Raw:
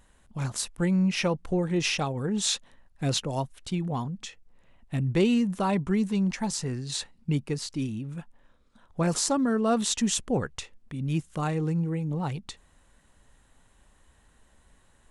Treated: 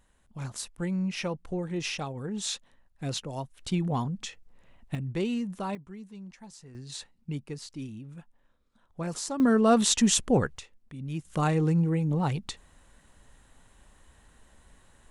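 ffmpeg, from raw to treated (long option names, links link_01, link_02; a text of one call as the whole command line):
ffmpeg -i in.wav -af "asetnsamples=nb_out_samples=441:pad=0,asendcmd='3.59 volume volume 1.5dB;4.95 volume volume -7dB;5.75 volume volume -18.5dB;6.75 volume volume -8dB;9.4 volume volume 3.5dB;10.58 volume volume -6.5dB;11.25 volume volume 3dB',volume=-6dB" out.wav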